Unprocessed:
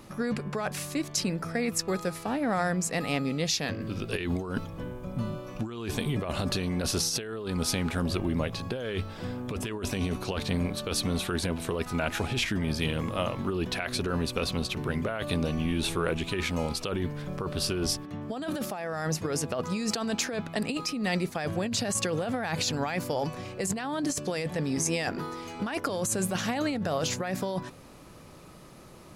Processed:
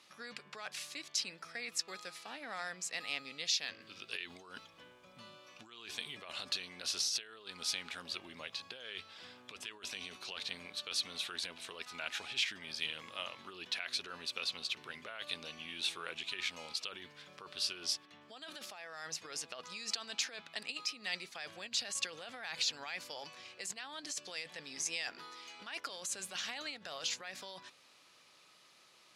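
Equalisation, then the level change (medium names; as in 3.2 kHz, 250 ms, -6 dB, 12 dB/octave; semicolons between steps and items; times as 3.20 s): band-pass filter 3.7 kHz, Q 1.1; -2.0 dB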